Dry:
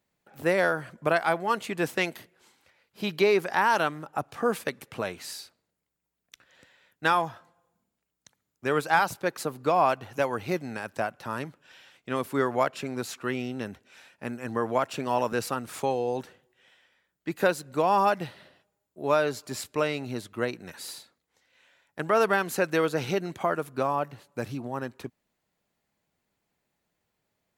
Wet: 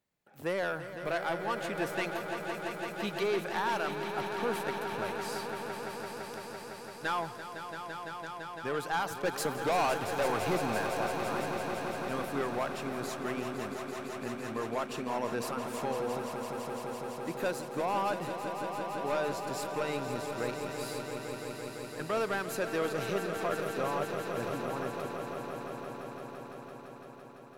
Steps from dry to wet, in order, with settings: 9.15–10.98 sample leveller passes 2; soft clip -19.5 dBFS, distortion -12 dB; swelling echo 0.169 s, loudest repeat 5, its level -10 dB; gain -6 dB

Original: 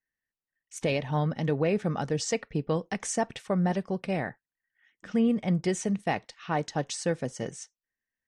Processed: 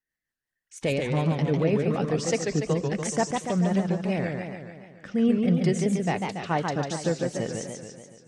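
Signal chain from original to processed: rotary speaker horn 5.5 Hz, later 0.9 Hz, at 4.93; warbling echo 0.143 s, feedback 60%, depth 191 cents, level -4 dB; gain +3 dB

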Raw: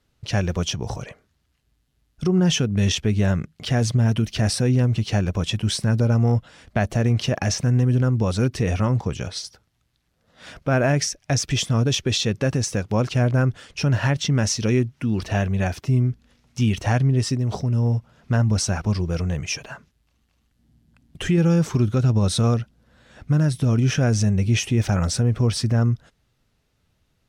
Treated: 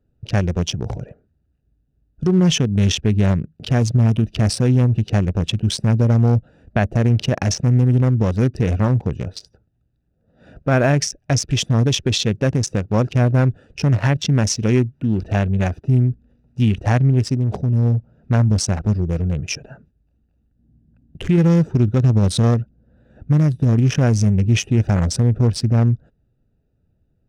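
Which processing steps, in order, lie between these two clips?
Wiener smoothing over 41 samples; gain +4 dB

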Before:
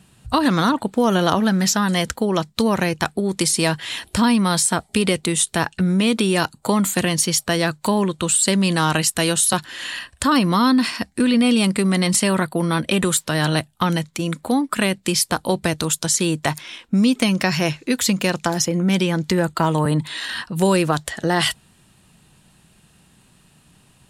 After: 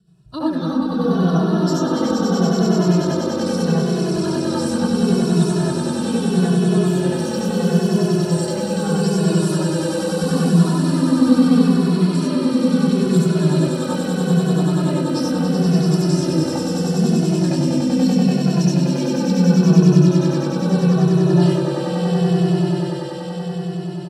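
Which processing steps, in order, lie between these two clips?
rotary speaker horn 7.5 Hz; swelling echo 96 ms, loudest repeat 8, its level -6 dB; reverb RT60 0.20 s, pre-delay 65 ms, DRR -6 dB; endless flanger 2.3 ms -0.76 Hz; gain -15.5 dB

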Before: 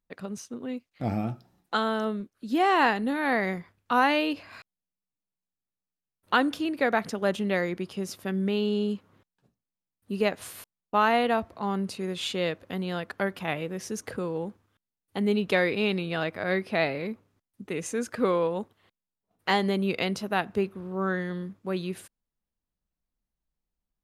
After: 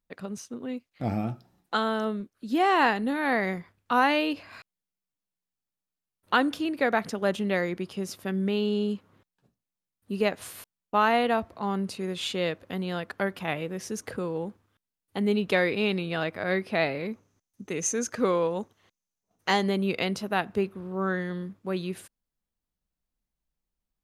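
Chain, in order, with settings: 17.12–19.63 bell 6200 Hz +15 dB 0.29 oct

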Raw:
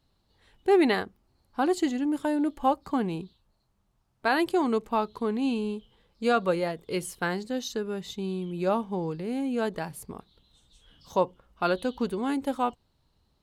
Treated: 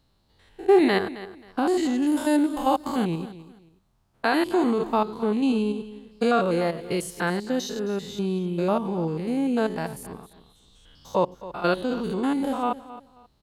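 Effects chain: stepped spectrum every 0.1 s; 2.02–3.05 high shelf 2700 Hz +11.5 dB; feedback echo 0.267 s, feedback 25%, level -16 dB; gain +5.5 dB

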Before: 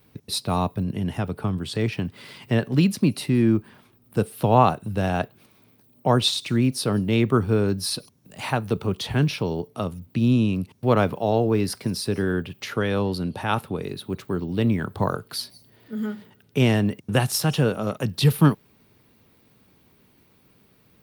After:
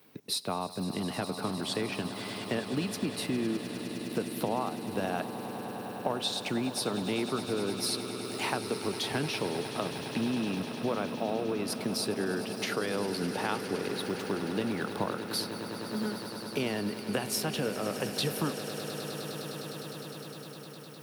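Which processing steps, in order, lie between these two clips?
HPF 240 Hz 12 dB/oct; compressor, threshold -29 dBFS, peak gain reduction 17 dB; swelling echo 0.102 s, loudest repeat 8, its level -15 dB

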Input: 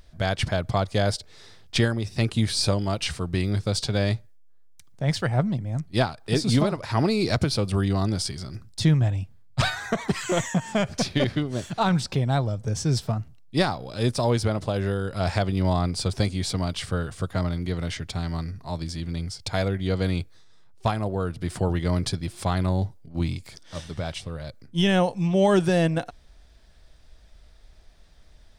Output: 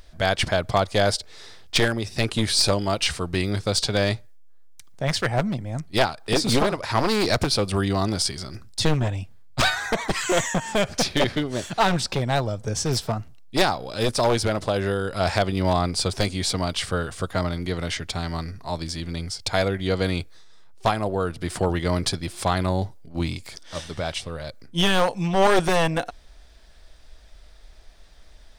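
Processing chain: one-sided fold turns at -19.5 dBFS; bell 120 Hz -8 dB 2.2 oct; gain +5.5 dB

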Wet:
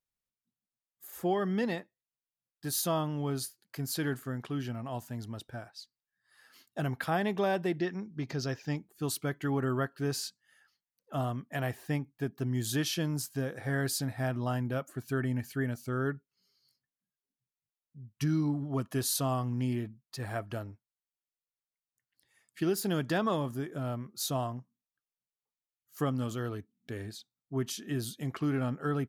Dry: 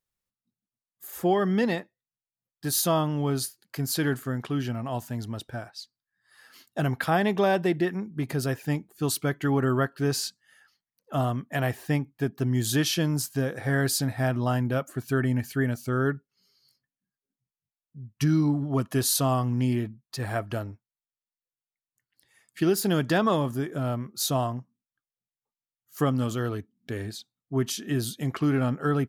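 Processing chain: 7.79–8.77 resonant high shelf 7500 Hz -10.5 dB, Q 3; gain -6.5 dB

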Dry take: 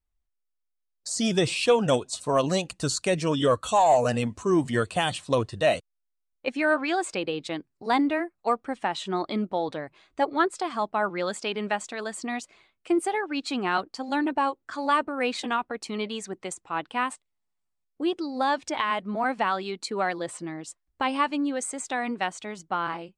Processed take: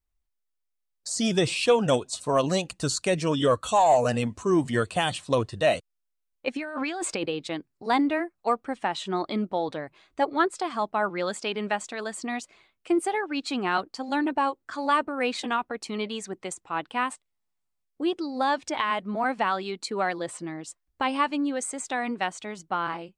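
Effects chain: 6.56–7.26 negative-ratio compressor -31 dBFS, ratio -1

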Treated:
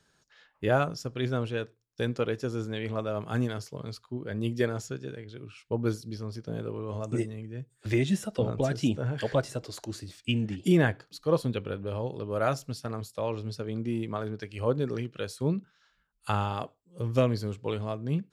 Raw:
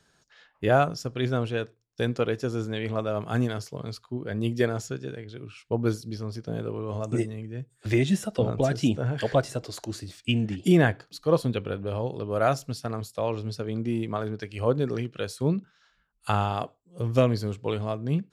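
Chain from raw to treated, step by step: notch 700 Hz, Q 13; gain -3 dB

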